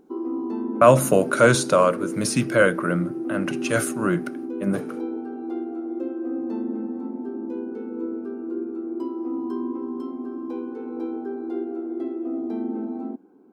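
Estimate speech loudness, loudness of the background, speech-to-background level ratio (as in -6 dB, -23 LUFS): -21.0 LUFS, -30.5 LUFS, 9.5 dB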